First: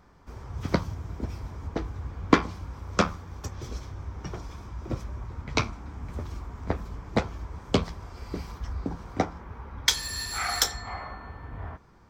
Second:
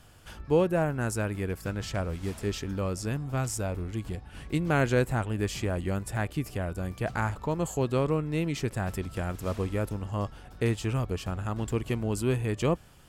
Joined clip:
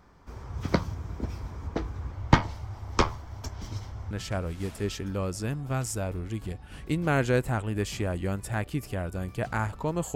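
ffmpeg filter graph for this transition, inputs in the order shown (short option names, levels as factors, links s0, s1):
-filter_complex "[0:a]asettb=1/sr,asplit=3[s0][s1][s2];[s0]atrim=end=2.124[s3];[s1]atrim=start=2.12:end=4.11,asetpts=PTS-STARTPTS,afade=t=in:d=0.004:c=qsin,afade=t=out:st=1.986:d=0.004:c=qsin,afreqshift=-160[s4];[s2]atrim=start=4.106[s5];[s3][s4]acrossfade=d=0.004:c1=hsin:c2=qsin[s6];[s6][s5]acrossfade=d=0.004:c1=qsin:c2=hsin,apad=whole_dur=10.15,atrim=end=10.15,atrim=end=4.112[s7];[1:a]atrim=start=1.738:end=7.78[s8];[s7][s8]acrossfade=d=0.004:c1=hsin:c2=hsin"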